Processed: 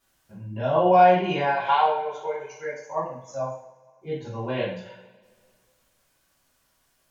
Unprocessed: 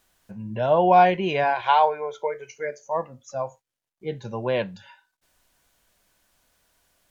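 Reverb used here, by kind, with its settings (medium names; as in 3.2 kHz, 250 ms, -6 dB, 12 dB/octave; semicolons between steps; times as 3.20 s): two-slope reverb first 0.53 s, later 2 s, from -20 dB, DRR -10 dB; trim -11.5 dB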